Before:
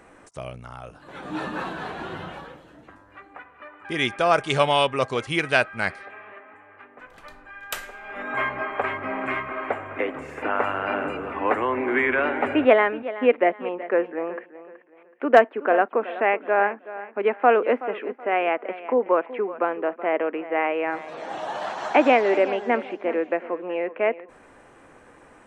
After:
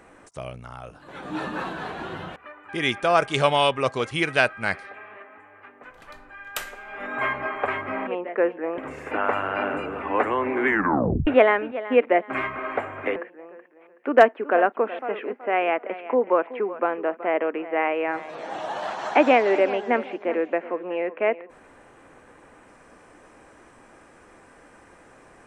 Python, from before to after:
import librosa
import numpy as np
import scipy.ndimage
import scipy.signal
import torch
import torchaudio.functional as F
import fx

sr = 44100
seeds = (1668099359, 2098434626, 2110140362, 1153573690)

y = fx.edit(x, sr, fx.cut(start_s=2.36, length_s=1.16),
    fx.swap(start_s=9.23, length_s=0.86, other_s=13.61, other_length_s=0.71),
    fx.tape_stop(start_s=11.98, length_s=0.6),
    fx.cut(start_s=16.15, length_s=1.63), tone=tone)